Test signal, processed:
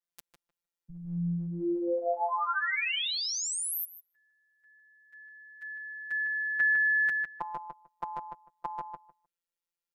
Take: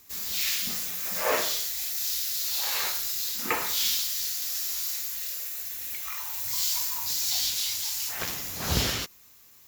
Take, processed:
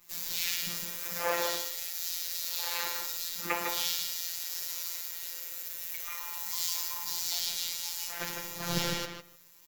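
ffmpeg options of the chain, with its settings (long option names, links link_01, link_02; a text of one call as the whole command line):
ffmpeg -i in.wav -filter_complex "[0:a]acrossover=split=190|3000[link_01][link_02][link_03];[link_02]acompressor=threshold=-22dB:ratio=6[link_04];[link_01][link_04][link_03]amix=inputs=3:normalize=0,afftfilt=real='hypot(re,im)*cos(PI*b)':imag='0':win_size=1024:overlap=0.75,asplit=2[link_05][link_06];[link_06]adelay=153,lowpass=frequency=2000:poles=1,volume=-3.5dB,asplit=2[link_07][link_08];[link_08]adelay=153,lowpass=frequency=2000:poles=1,volume=0.16,asplit=2[link_09][link_10];[link_10]adelay=153,lowpass=frequency=2000:poles=1,volume=0.16[link_11];[link_05][link_07][link_09][link_11]amix=inputs=4:normalize=0,adynamicequalizer=threshold=0.00631:dfrequency=3200:dqfactor=0.7:tfrequency=3200:tqfactor=0.7:attack=5:release=100:ratio=0.375:range=1.5:mode=cutabove:tftype=highshelf" out.wav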